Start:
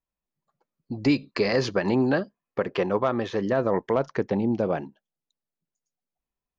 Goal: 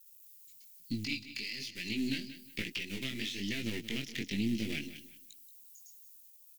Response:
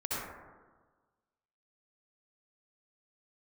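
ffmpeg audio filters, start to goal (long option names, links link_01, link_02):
-filter_complex "[0:a]aeval=exprs='if(lt(val(0),0),0.447*val(0),val(0))':channel_layout=same,aemphasis=mode=production:type=75fm,acrossover=split=380|1000[link_01][link_02][link_03];[link_03]aexciter=amount=3.6:drive=8.6:freq=2800[link_04];[link_01][link_02][link_04]amix=inputs=3:normalize=0,firequalizer=gain_entry='entry(110,0);entry(270,6);entry(520,-18);entry(1100,-25);entry(2000,13);entry(3600,7)':delay=0.05:min_phase=1,acompressor=threshold=-26dB:ratio=12,flanger=delay=17.5:depth=5.9:speed=1.1,asoftclip=type=tanh:threshold=-15dB,acrossover=split=3400[link_05][link_06];[link_06]acompressor=threshold=-48dB:ratio=4:attack=1:release=60[link_07];[link_05][link_07]amix=inputs=2:normalize=0,asplit=2[link_08][link_09];[link_09]aecho=0:1:180|360|540:0.211|0.055|0.0143[link_10];[link_08][link_10]amix=inputs=2:normalize=0"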